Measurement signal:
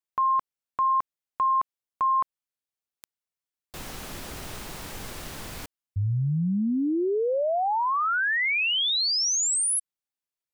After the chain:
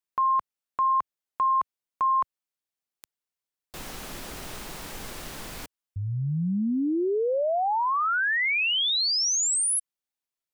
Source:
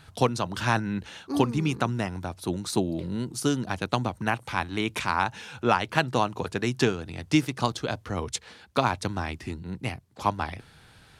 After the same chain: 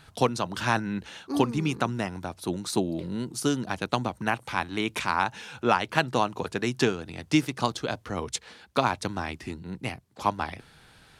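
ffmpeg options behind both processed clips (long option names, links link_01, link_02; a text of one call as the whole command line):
ffmpeg -i in.wav -af "equalizer=frequency=92:width=1.3:gain=-5.5" out.wav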